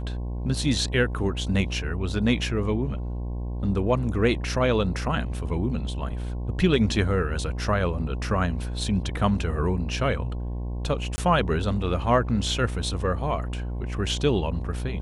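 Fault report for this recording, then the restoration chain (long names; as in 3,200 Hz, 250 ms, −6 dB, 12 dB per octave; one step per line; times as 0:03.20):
mains buzz 60 Hz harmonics 18 −30 dBFS
0:11.16–0:11.18: drop-out 20 ms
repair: hum removal 60 Hz, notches 18
repair the gap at 0:11.16, 20 ms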